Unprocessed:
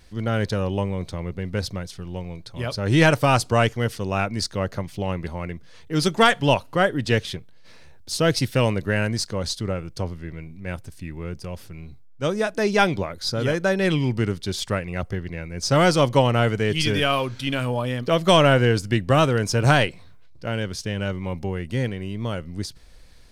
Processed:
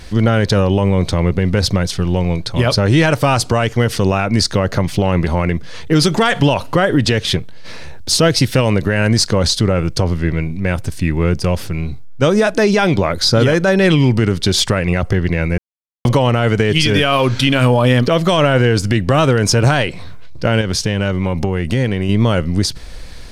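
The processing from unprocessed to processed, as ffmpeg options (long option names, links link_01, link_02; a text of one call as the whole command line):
ffmpeg -i in.wav -filter_complex "[0:a]asettb=1/sr,asplit=3[link_01][link_02][link_03];[link_01]atrim=end=4.934[link_04];[link_02]atrim=start=4.93:end=6.97,asetpts=PTS-STARTPTS,afade=type=in:duration=0.004:curve=qsin,afade=type=out:start_time=2.036:duration=0.004:curve=qsin,acompressor=threshold=-22dB:ratio=6:attack=3.2:release=140:knee=1:detection=peak[link_05];[link_03]atrim=start=6.966[link_06];[link_04][link_05]acrossfade=duration=0.004:curve1=hsin:curve2=qsin[link_07];[link_07][link_06]acrossfade=duration=0.004:curve1=qsin:curve2=hsin,asettb=1/sr,asplit=3[link_08][link_09][link_10];[link_08]atrim=end=20.614[link_11];[link_09]atrim=start=20.61:end=22.09,asetpts=PTS-STARTPTS,afade=type=in:duration=0.004:curve=qsin,afade=type=out:start_time=1.476:duration=0.004:curve=qsin,acompressor=threshold=-30dB:ratio=6:attack=3.2:release=140:knee=1:detection=peak[link_12];[link_10]atrim=start=22.086[link_13];[link_11][link_12]acrossfade=duration=0.004:curve1=hsin:curve2=qsin[link_14];[link_14][link_13]acrossfade=duration=0.004:curve1=qsin:curve2=hsin,asplit=3[link_15][link_16][link_17];[link_15]atrim=end=15.58,asetpts=PTS-STARTPTS,afade=type=out:start_time=15.576:duration=0.004:curve=hsin[link_18];[link_16]atrim=start=15.58:end=16.05,asetpts=PTS-STARTPTS,volume=0[link_19];[link_17]atrim=start=16.05,asetpts=PTS-STARTPTS,afade=type=in:duration=0.004:curve=hsin[link_20];[link_18][link_19][link_20]concat=n=3:v=0:a=1,highshelf=frequency=11000:gain=-7,acompressor=threshold=-24dB:ratio=4,alimiter=level_in=20.5dB:limit=-1dB:release=50:level=0:latency=1,volume=-3dB" out.wav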